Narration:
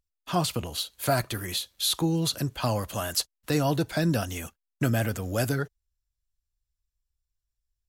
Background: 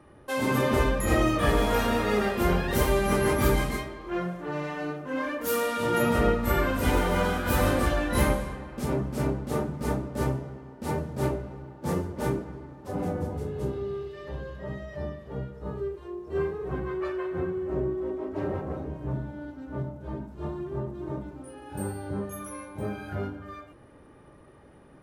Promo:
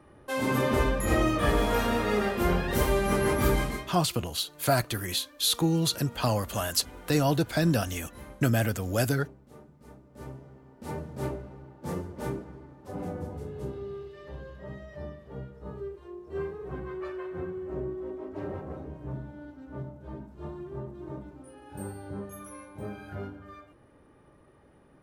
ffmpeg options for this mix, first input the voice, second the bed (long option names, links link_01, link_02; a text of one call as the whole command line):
ffmpeg -i stem1.wav -i stem2.wav -filter_complex "[0:a]adelay=3600,volume=0.5dB[link_01];[1:a]volume=15.5dB,afade=type=out:start_time=3.66:duration=0.41:silence=0.0891251,afade=type=in:start_time=10.03:duration=1.04:silence=0.141254[link_02];[link_01][link_02]amix=inputs=2:normalize=0" out.wav